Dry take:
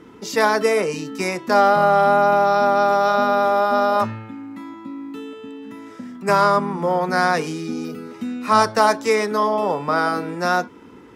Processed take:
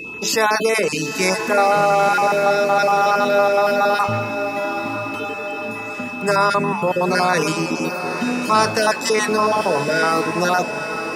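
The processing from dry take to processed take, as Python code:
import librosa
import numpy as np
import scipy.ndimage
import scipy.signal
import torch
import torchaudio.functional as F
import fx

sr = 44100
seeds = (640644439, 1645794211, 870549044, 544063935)

p1 = fx.spec_dropout(x, sr, seeds[0], share_pct=28)
p2 = fx.over_compress(p1, sr, threshold_db=-25.0, ratio=-1.0)
p3 = p1 + (p2 * 10.0 ** (0.5 / 20.0))
p4 = fx.high_shelf(p3, sr, hz=3700.0, db=5.5)
p5 = p4 + 10.0 ** (-28.0 / 20.0) * np.sin(2.0 * np.pi * 2600.0 * np.arange(len(p4)) / sr)
p6 = fx.peak_eq(p5, sr, hz=270.0, db=-7.5, octaves=0.21)
p7 = fx.hum_notches(p6, sr, base_hz=50, count=4)
p8 = p7 + fx.echo_diffused(p7, sr, ms=924, feedback_pct=53, wet_db=-9, dry=0)
y = p8 * 10.0 ** (-2.0 / 20.0)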